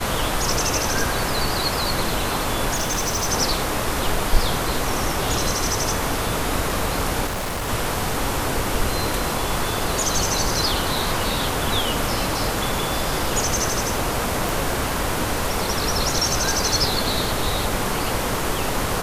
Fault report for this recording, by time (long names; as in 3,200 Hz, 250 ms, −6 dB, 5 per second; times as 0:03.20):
0:02.74–0:03.27: clipping −18.5 dBFS
0:07.26–0:07.69: clipping −23 dBFS
0:14.49: click